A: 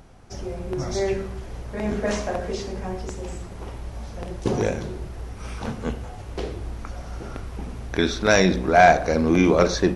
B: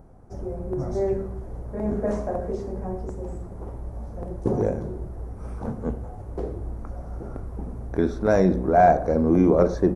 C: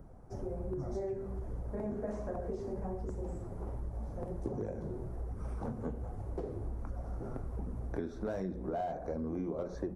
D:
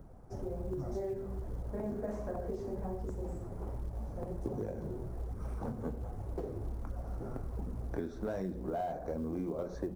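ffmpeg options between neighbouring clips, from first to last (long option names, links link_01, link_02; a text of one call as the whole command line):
ffmpeg -i in.wav -af "firequalizer=gain_entry='entry(550,0);entry(2800,-24);entry(9500,-10)':delay=0.05:min_phase=1" out.wav
ffmpeg -i in.wav -filter_complex "[0:a]acrossover=split=150|1000[link_01][link_02][link_03];[link_03]volume=30dB,asoftclip=hard,volume=-30dB[link_04];[link_01][link_02][link_04]amix=inputs=3:normalize=0,flanger=delay=0.6:depth=7.6:regen=-45:speed=1.3:shape=sinusoidal,acompressor=threshold=-34dB:ratio=8" out.wav
ffmpeg -i in.wav -af "acrusher=bits=9:mode=log:mix=0:aa=0.000001" out.wav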